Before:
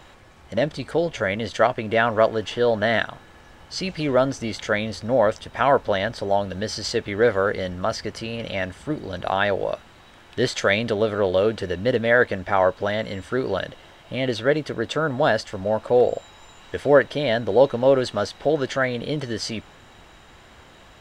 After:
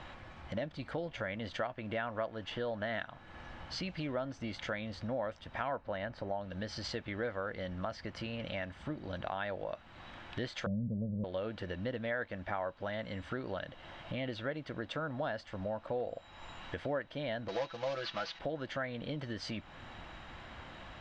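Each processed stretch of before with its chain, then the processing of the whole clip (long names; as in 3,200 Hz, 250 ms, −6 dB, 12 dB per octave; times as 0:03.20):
0:05.76–0:06.41: high-shelf EQ 4,100 Hz −9.5 dB + notch filter 3,400 Hz, Q 9.1
0:10.66–0:11.24: Butterworth low-pass 550 Hz + low shelf with overshoot 250 Hz +10 dB, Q 3
0:17.48–0:18.39: variable-slope delta modulation 32 kbit/s + tilt shelving filter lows −8 dB, about 840 Hz + comb filter 6 ms, depth 85%
whole clip: low-pass filter 3,600 Hz 12 dB per octave; parametric band 420 Hz −9.5 dB 0.32 octaves; downward compressor 3 to 1, threshold −40 dBFS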